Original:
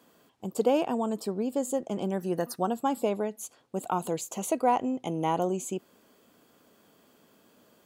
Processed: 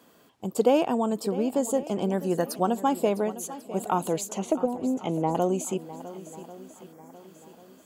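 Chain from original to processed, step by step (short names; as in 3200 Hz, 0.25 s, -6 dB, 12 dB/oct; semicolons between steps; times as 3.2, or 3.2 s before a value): 4.26–5.35 treble ducked by the level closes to 300 Hz, closed at -21 dBFS; swung echo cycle 1.093 s, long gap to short 1.5:1, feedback 36%, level -15.5 dB; 6.93–7.14 spectral gain 2400–5100 Hz -14 dB; gain +3.5 dB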